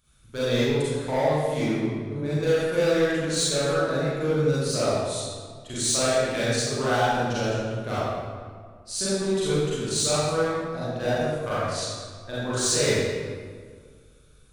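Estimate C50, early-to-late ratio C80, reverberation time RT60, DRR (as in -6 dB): -6.0 dB, -2.0 dB, 1.8 s, -11.5 dB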